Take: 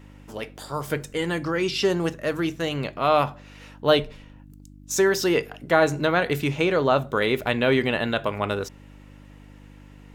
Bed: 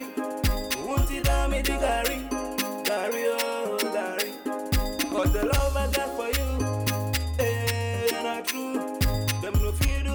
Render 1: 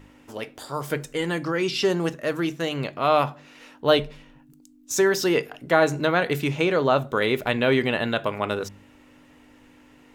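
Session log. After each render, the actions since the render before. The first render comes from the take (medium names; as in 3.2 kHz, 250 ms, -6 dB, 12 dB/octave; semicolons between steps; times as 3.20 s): de-hum 50 Hz, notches 4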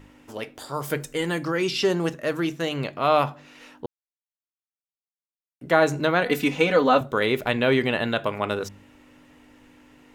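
0.82–1.73 s: treble shelf 9.4 kHz +6.5 dB; 3.86–5.61 s: mute; 6.25–7.01 s: comb 4 ms, depth 91%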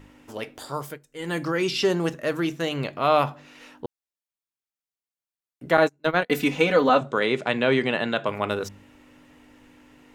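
0.74–1.37 s: dip -22.5 dB, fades 0.25 s; 5.77–6.30 s: gate -22 dBFS, range -37 dB; 6.89–8.29 s: elliptic band-pass 140–8200 Hz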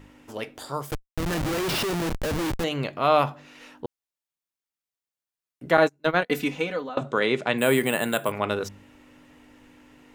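0.91–2.64 s: Schmitt trigger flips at -30.5 dBFS; 6.15–6.97 s: fade out, to -23.5 dB; 7.58–8.32 s: careless resampling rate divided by 4×, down none, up hold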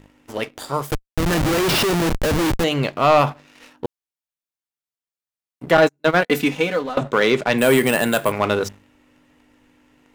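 waveshaping leveller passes 2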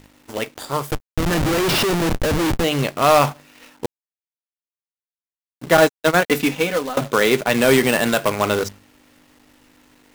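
companded quantiser 4-bit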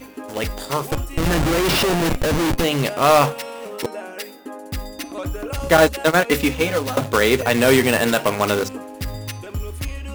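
add bed -4 dB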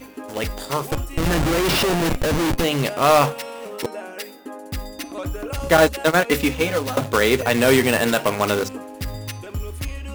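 trim -1 dB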